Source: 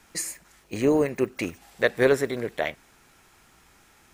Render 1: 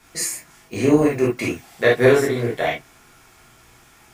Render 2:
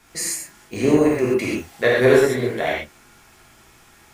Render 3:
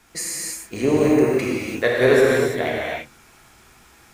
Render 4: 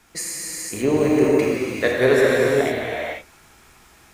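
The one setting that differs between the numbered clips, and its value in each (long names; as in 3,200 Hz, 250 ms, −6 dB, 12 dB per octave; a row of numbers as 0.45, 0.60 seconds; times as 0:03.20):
reverb whose tail is shaped and stops, gate: 90, 160, 360, 530 milliseconds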